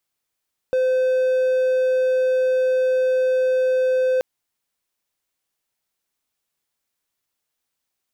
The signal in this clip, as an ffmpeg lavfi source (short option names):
-f lavfi -i "aevalsrc='0.2*(1-4*abs(mod(514*t+0.25,1)-0.5))':d=3.48:s=44100"